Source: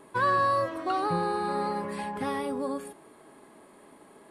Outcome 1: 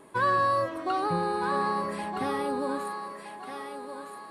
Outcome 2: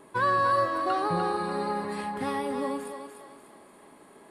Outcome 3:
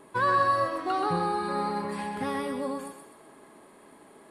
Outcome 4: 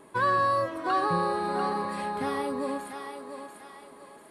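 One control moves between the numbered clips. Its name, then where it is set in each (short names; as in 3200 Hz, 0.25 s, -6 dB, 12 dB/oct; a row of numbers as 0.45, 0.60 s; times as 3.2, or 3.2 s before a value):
thinning echo, time: 1.265, 0.296, 0.127, 0.692 s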